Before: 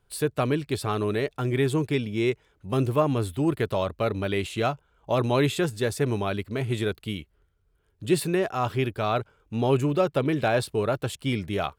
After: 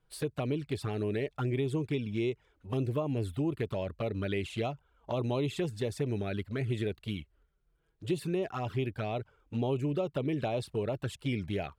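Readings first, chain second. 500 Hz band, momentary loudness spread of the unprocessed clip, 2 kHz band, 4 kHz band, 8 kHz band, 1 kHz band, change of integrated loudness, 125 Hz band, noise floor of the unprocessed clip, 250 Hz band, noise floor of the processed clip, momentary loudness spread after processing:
-8.0 dB, 6 LU, -10.5 dB, -9.0 dB, -12.5 dB, -11.5 dB, -7.5 dB, -5.5 dB, -69 dBFS, -6.5 dB, -73 dBFS, 5 LU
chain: high shelf 7400 Hz -9 dB; compressor 4:1, threshold -26 dBFS, peak gain reduction 9 dB; envelope flanger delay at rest 6.4 ms, full sweep at -24.5 dBFS; gain -1.5 dB

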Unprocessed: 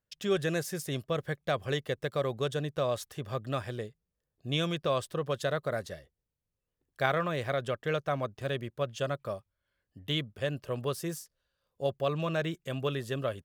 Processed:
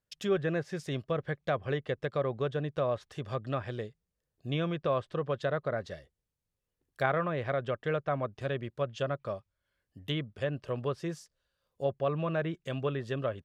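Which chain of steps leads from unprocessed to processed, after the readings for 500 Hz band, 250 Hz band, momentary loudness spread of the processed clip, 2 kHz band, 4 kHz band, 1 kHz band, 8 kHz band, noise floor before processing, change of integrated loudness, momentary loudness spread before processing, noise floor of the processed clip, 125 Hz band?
0.0 dB, 0.0 dB, 7 LU, -1.5 dB, -6.5 dB, -0.5 dB, under -10 dB, under -85 dBFS, -0.5 dB, 8 LU, under -85 dBFS, 0.0 dB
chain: treble ducked by the level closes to 2000 Hz, closed at -27.5 dBFS

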